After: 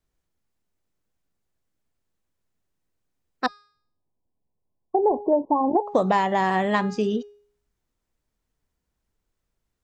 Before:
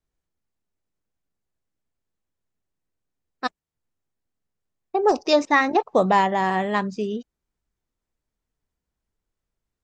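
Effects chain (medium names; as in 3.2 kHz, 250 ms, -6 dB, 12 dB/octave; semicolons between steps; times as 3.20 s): 3.46–5.84 s: brick-wall FIR low-pass 1.1 kHz; de-hum 412.2 Hz, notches 33; compression 5:1, threshold -21 dBFS, peak gain reduction 8.5 dB; trim +4 dB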